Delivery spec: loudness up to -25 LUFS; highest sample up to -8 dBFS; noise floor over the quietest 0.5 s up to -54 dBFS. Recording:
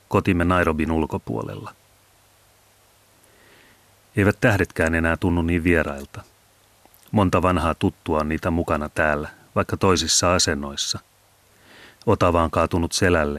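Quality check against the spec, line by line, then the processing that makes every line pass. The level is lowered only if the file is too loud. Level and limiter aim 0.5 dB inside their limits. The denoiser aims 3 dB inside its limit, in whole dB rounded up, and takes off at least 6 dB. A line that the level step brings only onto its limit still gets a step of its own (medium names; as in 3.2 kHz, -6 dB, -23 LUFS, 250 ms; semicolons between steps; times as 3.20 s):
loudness -21.0 LUFS: fail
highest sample -4.5 dBFS: fail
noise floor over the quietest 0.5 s -57 dBFS: pass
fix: trim -4.5 dB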